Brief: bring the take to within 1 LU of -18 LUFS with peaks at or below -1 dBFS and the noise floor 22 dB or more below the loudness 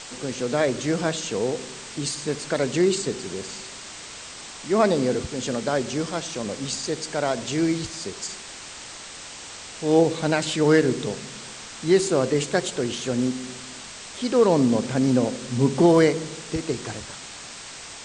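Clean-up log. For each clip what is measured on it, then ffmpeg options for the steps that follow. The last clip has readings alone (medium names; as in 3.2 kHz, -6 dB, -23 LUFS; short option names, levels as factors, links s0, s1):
noise floor -40 dBFS; noise floor target -46 dBFS; loudness -23.5 LUFS; peak level -5.0 dBFS; loudness target -18.0 LUFS
-> -af "afftdn=nr=6:nf=-40"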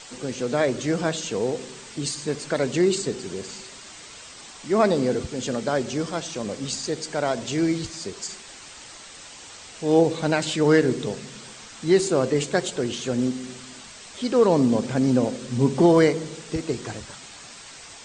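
noise floor -43 dBFS; noise floor target -46 dBFS
-> -af "afftdn=nr=6:nf=-43"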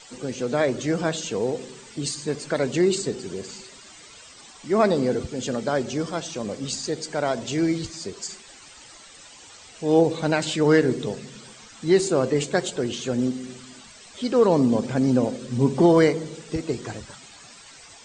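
noise floor -47 dBFS; loudness -23.5 LUFS; peak level -5.0 dBFS; loudness target -18.0 LUFS
-> -af "volume=1.88,alimiter=limit=0.891:level=0:latency=1"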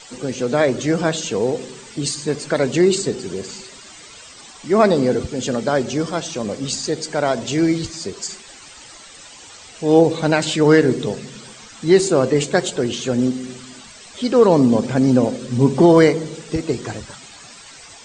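loudness -18.5 LUFS; peak level -1.0 dBFS; noise floor -42 dBFS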